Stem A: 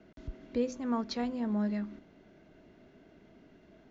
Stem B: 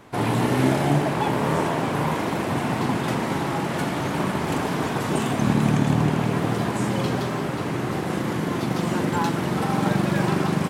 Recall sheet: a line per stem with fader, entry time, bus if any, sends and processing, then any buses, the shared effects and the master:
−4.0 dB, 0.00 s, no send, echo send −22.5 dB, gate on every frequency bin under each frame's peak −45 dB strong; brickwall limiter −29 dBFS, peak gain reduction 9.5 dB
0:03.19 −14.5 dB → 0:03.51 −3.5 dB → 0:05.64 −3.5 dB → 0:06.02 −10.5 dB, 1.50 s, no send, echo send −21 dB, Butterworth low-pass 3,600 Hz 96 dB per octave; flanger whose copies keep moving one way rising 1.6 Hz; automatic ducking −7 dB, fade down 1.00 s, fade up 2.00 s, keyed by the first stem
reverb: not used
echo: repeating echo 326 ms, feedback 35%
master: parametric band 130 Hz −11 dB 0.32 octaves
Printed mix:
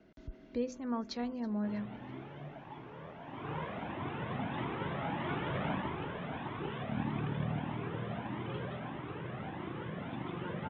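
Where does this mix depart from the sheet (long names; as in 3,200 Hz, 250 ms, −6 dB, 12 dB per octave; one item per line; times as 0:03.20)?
stem A: missing brickwall limiter −29 dBFS, peak gain reduction 9.5 dB
master: missing parametric band 130 Hz −11 dB 0.32 octaves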